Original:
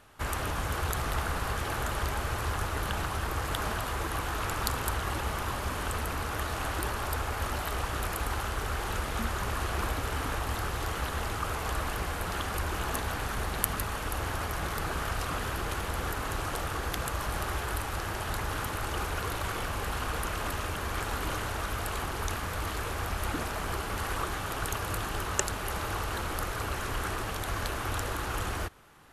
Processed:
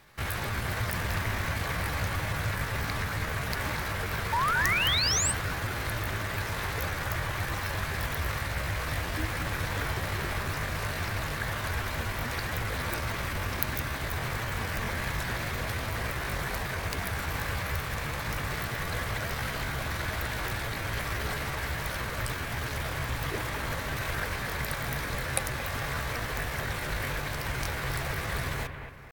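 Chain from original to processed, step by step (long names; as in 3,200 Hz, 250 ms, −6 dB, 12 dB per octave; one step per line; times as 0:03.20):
sound drawn into the spectrogram rise, 0:04.34–0:05.34, 630–6,300 Hz −27 dBFS
pitch shifter +5.5 semitones
bucket-brigade delay 225 ms, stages 4,096, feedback 41%, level −8 dB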